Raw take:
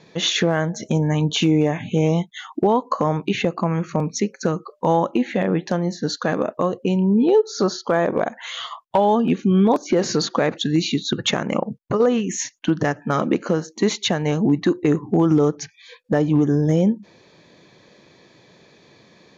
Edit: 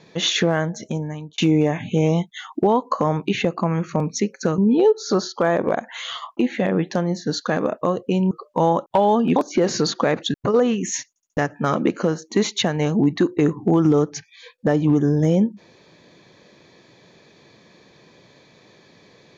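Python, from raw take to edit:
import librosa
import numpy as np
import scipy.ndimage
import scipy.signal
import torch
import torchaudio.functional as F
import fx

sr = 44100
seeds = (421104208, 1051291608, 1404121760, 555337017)

y = fx.edit(x, sr, fx.fade_out_span(start_s=0.55, length_s=0.83),
    fx.swap(start_s=4.58, length_s=0.55, other_s=7.07, other_length_s=1.79),
    fx.cut(start_s=9.36, length_s=0.35),
    fx.cut(start_s=10.69, length_s=1.11),
    fx.stutter_over(start_s=12.55, slice_s=0.07, count=4), tone=tone)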